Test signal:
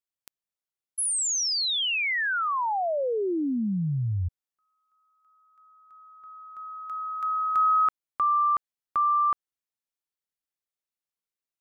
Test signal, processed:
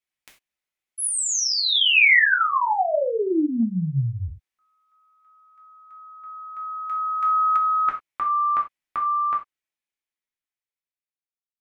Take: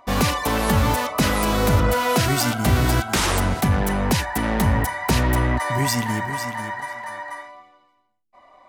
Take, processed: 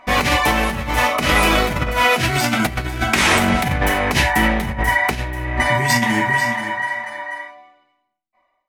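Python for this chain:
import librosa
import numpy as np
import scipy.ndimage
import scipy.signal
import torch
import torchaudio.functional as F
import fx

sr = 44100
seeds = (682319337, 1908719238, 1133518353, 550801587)

y = fx.fade_out_tail(x, sr, length_s=2.84)
y = fx.high_shelf(y, sr, hz=11000.0, db=-6.5)
y = fx.rev_gated(y, sr, seeds[0], gate_ms=120, shape='falling', drr_db=-1.5)
y = fx.over_compress(y, sr, threshold_db=-18.0, ratio=-0.5)
y = fx.peak_eq(y, sr, hz=2300.0, db=9.0, octaves=0.71)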